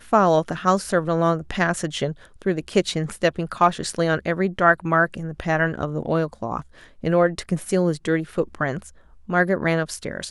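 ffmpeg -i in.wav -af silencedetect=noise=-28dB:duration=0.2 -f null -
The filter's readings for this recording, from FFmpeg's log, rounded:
silence_start: 2.12
silence_end: 2.42 | silence_duration: 0.30
silence_start: 6.61
silence_end: 7.04 | silence_duration: 0.43
silence_start: 8.82
silence_end: 9.29 | silence_duration: 0.47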